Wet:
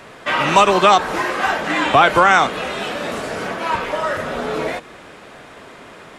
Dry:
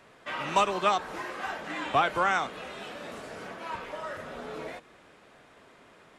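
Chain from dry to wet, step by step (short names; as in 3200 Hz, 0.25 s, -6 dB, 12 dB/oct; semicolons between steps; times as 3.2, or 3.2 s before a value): maximiser +17 dB; gain -1 dB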